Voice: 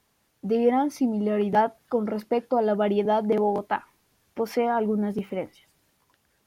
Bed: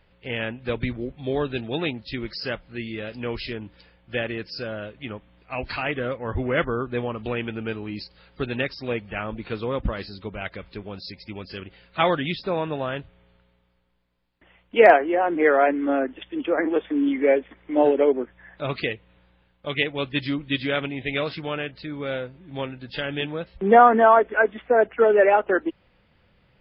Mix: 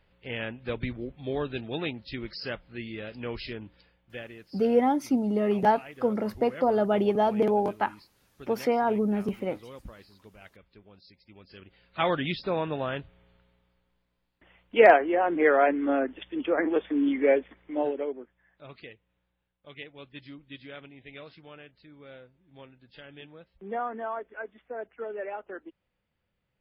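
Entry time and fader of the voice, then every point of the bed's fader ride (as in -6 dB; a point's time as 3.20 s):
4.10 s, -1.0 dB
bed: 3.64 s -5.5 dB
4.57 s -18.5 dB
11.24 s -18.5 dB
12.20 s -3 dB
17.40 s -3 dB
18.43 s -19 dB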